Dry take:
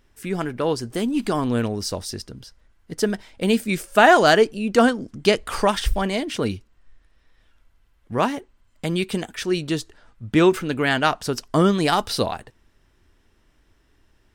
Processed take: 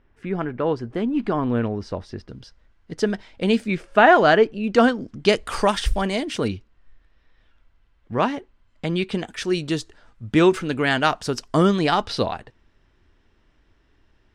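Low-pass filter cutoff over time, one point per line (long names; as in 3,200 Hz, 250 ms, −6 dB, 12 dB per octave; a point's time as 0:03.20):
2,100 Hz
from 0:02.29 5,000 Hz
from 0:03.68 2,800 Hz
from 0:04.64 5,000 Hz
from 0:05.29 10,000 Hz
from 0:06.48 4,400 Hz
from 0:09.28 8,700 Hz
from 0:11.79 4,600 Hz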